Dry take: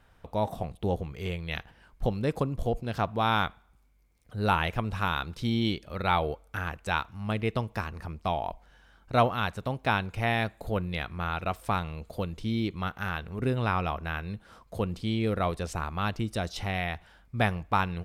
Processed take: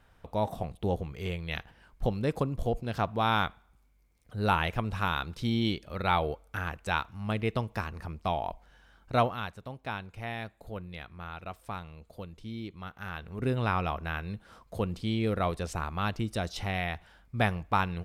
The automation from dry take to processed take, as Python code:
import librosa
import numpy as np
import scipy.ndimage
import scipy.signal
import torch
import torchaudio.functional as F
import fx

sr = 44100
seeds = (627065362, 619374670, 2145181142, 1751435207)

y = fx.gain(x, sr, db=fx.line((9.13, -1.0), (9.58, -10.0), (12.85, -10.0), (13.51, -1.0)))